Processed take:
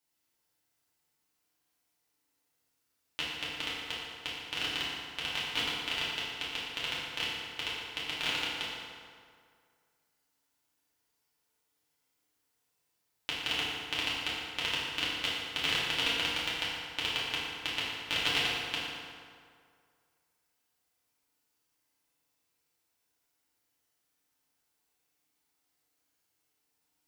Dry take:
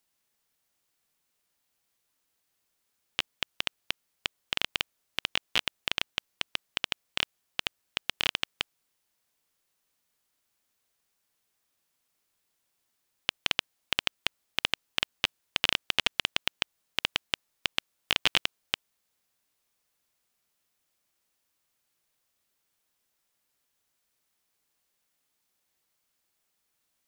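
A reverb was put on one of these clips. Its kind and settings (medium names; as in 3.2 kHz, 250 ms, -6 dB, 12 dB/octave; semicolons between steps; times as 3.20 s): FDN reverb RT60 2.1 s, low-frequency decay 0.9×, high-frequency decay 0.65×, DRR -9 dB; trim -10 dB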